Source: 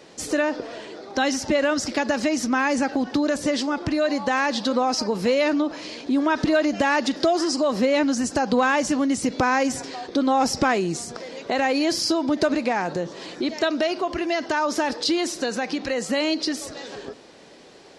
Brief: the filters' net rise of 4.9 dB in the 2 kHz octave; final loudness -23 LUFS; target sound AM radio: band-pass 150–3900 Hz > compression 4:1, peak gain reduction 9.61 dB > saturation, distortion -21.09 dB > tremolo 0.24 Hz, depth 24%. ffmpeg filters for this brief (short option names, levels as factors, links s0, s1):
-af "highpass=150,lowpass=3900,equalizer=f=2000:t=o:g=6.5,acompressor=threshold=0.0631:ratio=4,asoftclip=threshold=0.133,tremolo=f=0.24:d=0.24,volume=2.24"